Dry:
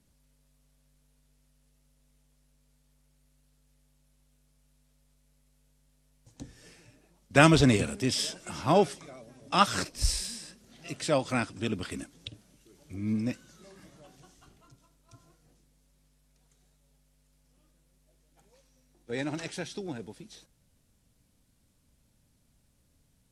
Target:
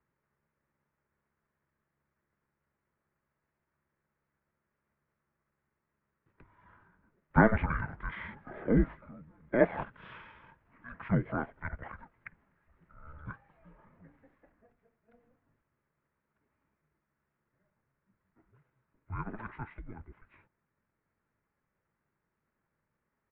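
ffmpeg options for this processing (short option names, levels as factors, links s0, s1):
-af "asetrate=30296,aresample=44100,atempo=1.45565,bandreject=f=980:w=9.8,highpass=f=300:t=q:w=0.5412,highpass=f=300:t=q:w=1.307,lowpass=f=2100:t=q:w=0.5176,lowpass=f=2100:t=q:w=0.7071,lowpass=f=2100:t=q:w=1.932,afreqshift=-230"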